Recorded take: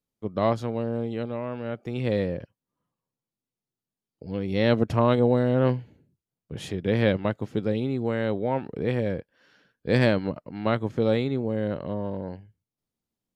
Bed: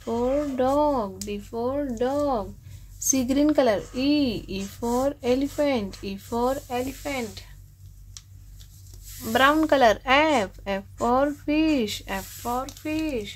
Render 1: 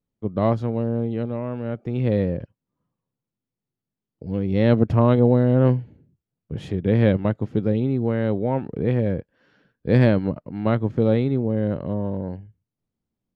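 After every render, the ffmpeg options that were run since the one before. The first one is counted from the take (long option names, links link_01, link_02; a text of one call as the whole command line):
ffmpeg -i in.wav -af "lowpass=frequency=2400:poles=1,lowshelf=frequency=340:gain=8" out.wav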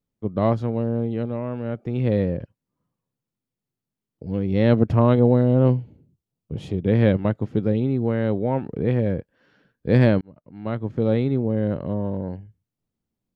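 ffmpeg -i in.wav -filter_complex "[0:a]asettb=1/sr,asplit=3[link_01][link_02][link_03];[link_01]atrim=end=5.414[link_04];[link_02]atrim=start=5.41:end=6.87,asetpts=PTS-STARTPTS,afade=type=in:duration=0.004:curve=qsin,afade=type=out:start_time=1.456:duration=0.004:curve=qsin,equalizer=frequency=1700:width=2.8:gain=-10.5[link_05];[link_03]atrim=start=6.866[link_06];[link_04][link_05]acrossfade=duration=0.004:curve1=hsin:curve2=qsin[link_07];[link_07][link_06]acrossfade=duration=0.004:curve1=qsin:curve2=hsin,asplit=2[link_08][link_09];[link_08]atrim=end=10.21,asetpts=PTS-STARTPTS,afade=type=out:start_time=10.206:duration=0.004:curve=hsin[link_10];[link_09]atrim=start=10.21,asetpts=PTS-STARTPTS,afade=type=in:duration=1.07[link_11];[link_10][link_11]concat=n=2:v=0:a=1" out.wav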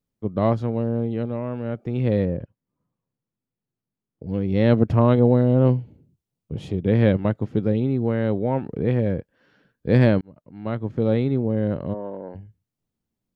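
ffmpeg -i in.wav -filter_complex "[0:a]asettb=1/sr,asplit=3[link_01][link_02][link_03];[link_01]atrim=end=2.254[link_04];[link_02]atrim=start=2.25:end=4.29,asetpts=PTS-STARTPTS,afade=type=in:duration=0.004:curve=qsin,afade=type=out:start_time=2.036:duration=0.004:curve=qsin,lowpass=frequency=1600:poles=1[link_05];[link_03]atrim=start=4.286[link_06];[link_04][link_05]acrossfade=duration=0.004:curve1=hsin:curve2=qsin[link_07];[link_07][link_06]acrossfade=duration=0.004:curve1=qsin:curve2=hsin,asplit=3[link_08][link_09][link_10];[link_08]afade=type=out:start_time=11.93:duration=0.02[link_11];[link_09]highpass=380,lowpass=2300,afade=type=in:start_time=11.93:duration=0.02,afade=type=out:start_time=12.34:duration=0.02[link_12];[link_10]afade=type=in:start_time=12.34:duration=0.02[link_13];[link_11][link_12][link_13]amix=inputs=3:normalize=0" out.wav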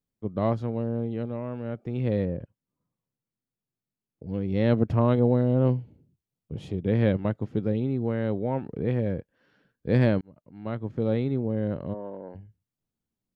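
ffmpeg -i in.wav -af "volume=-5dB" out.wav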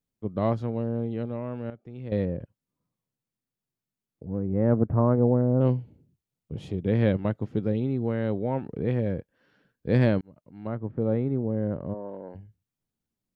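ffmpeg -i in.wav -filter_complex "[0:a]asettb=1/sr,asplit=3[link_01][link_02][link_03];[link_01]atrim=end=4.254[link_04];[link_02]atrim=start=4.25:end=5.61,asetpts=PTS-STARTPTS,afade=type=in:duration=0.004:curve=qsin,afade=type=out:start_time=1.356:duration=0.004:curve=qsin,lowpass=frequency=1400:width=0.5412,lowpass=frequency=1400:width=1.3066[link_05];[link_03]atrim=start=5.606[link_06];[link_04][link_05]acrossfade=duration=0.004:curve1=hsin:curve2=qsin[link_07];[link_07][link_06]acrossfade=duration=0.004:curve1=qsin:curve2=hsin,asettb=1/sr,asplit=3[link_08][link_09][link_10];[link_08]atrim=end=10.674[link_11];[link_09]atrim=start=10.67:end=12.09,asetpts=PTS-STARTPTS,afade=type=in:duration=0.004:curve=qsin,afade=type=out:start_time=1.416:duration=0.004:curve=qsin,lowpass=1500[link_12];[link_10]atrim=start=12.086[link_13];[link_11][link_12]acrossfade=duration=0.004:curve1=hsin:curve2=qsin[link_14];[link_14][link_13]acrossfade=duration=0.004:curve1=qsin:curve2=hsin,asplit=3[link_15][link_16][link_17];[link_15]atrim=end=1.702[link_18];[link_16]atrim=start=1.698:end=2.122,asetpts=PTS-STARTPTS,volume=-10.5dB[link_19];[link_17]atrim=start=2.118[link_20];[link_18][link_19]acrossfade=duration=0.004:curve1=hsin:curve2=hsin[link_21];[link_21][link_20]acrossfade=duration=0.004:curve1=hsin:curve2=hsin" out.wav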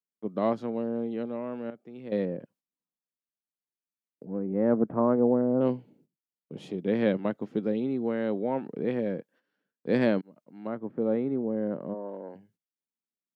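ffmpeg -i in.wav -af "agate=range=-15dB:threshold=-56dB:ratio=16:detection=peak,highpass=frequency=190:width=0.5412,highpass=frequency=190:width=1.3066" out.wav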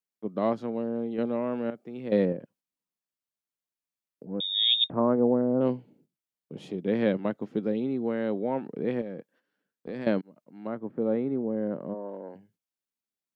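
ffmpeg -i in.wav -filter_complex "[0:a]asettb=1/sr,asplit=3[link_01][link_02][link_03];[link_01]atrim=end=1.184[link_04];[link_02]atrim=start=1.18:end=2.33,asetpts=PTS-STARTPTS,afade=type=in:duration=0.004:curve=qsin,afade=type=out:start_time=1.146:duration=0.004:curve=qsin,acontrast=28[link_05];[link_03]atrim=start=2.326[link_06];[link_04][link_05]acrossfade=duration=0.004:curve1=hsin:curve2=qsin[link_07];[link_07][link_06]acrossfade=duration=0.004:curve1=qsin:curve2=hsin,asettb=1/sr,asplit=3[link_08][link_09][link_10];[link_08]atrim=end=4.404[link_11];[link_09]atrim=start=4.4:end=4.9,asetpts=PTS-STARTPTS,afade=type=in:duration=0.004:curve=qsin,afade=type=out:start_time=0.496:duration=0.004:curve=qsin,lowpass=frequency=3300:width_type=q:width=0.5098,lowpass=frequency=3300:width_type=q:width=0.6013,lowpass=frequency=3300:width_type=q:width=0.9,lowpass=frequency=3300:width_type=q:width=2.563,afreqshift=-3900[link_12];[link_10]atrim=start=4.896[link_13];[link_11][link_12]acrossfade=duration=0.004:curve1=hsin:curve2=qsin[link_14];[link_14][link_13]acrossfade=duration=0.004:curve1=qsin:curve2=hsin,asettb=1/sr,asplit=3[link_15][link_16][link_17];[link_15]atrim=end=9.014[link_18];[link_16]atrim=start=9.01:end=10.07,asetpts=PTS-STARTPTS,afade=type=in:duration=0.004:curve=qsin,afade=type=out:start_time=1.056:duration=0.004:curve=qsin,acompressor=threshold=-32dB:ratio=6:attack=3.2:release=140:knee=1:detection=peak[link_19];[link_17]atrim=start=10.066[link_20];[link_18][link_19]acrossfade=duration=0.004:curve1=hsin:curve2=qsin[link_21];[link_21][link_20]acrossfade=duration=0.004:curve1=qsin:curve2=hsin" out.wav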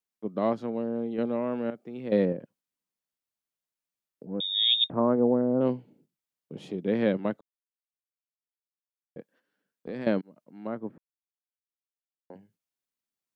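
ffmpeg -i in.wav -filter_complex "[0:a]asplit=5[link_01][link_02][link_03][link_04][link_05];[link_01]atrim=end=7.41,asetpts=PTS-STARTPTS,afade=type=out:start_time=7.406:duration=0.004:curve=hsin[link_06];[link_02]atrim=start=7.41:end=9.16,asetpts=PTS-STARTPTS,volume=0[link_07];[link_03]atrim=start=9.16:end=10.98,asetpts=PTS-STARTPTS,afade=type=in:duration=0.004:curve=hsin,afade=type=out:start_time=1.816:duration=0.004:curve=hsin[link_08];[link_04]atrim=start=10.98:end=12.3,asetpts=PTS-STARTPTS,volume=0[link_09];[link_05]atrim=start=12.3,asetpts=PTS-STARTPTS,afade=type=in:duration=0.004:curve=hsin[link_10];[link_06][link_07][link_08][link_09][link_10]concat=n=5:v=0:a=1" out.wav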